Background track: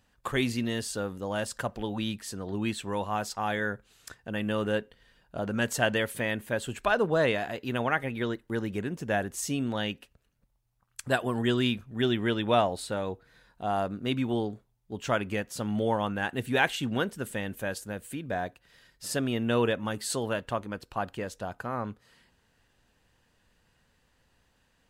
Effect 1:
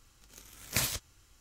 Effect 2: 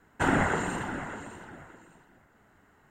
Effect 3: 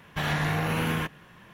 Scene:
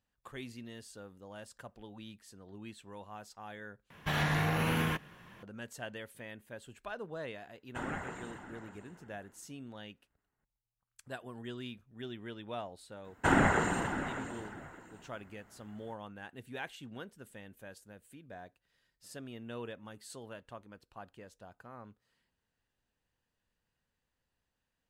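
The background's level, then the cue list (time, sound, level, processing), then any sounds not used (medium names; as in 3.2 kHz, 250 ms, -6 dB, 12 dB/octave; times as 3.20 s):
background track -17 dB
3.90 s: replace with 3 -3.5 dB
7.55 s: add 2 -15 dB + expander -55 dBFS
13.04 s: add 2 -1 dB
not used: 1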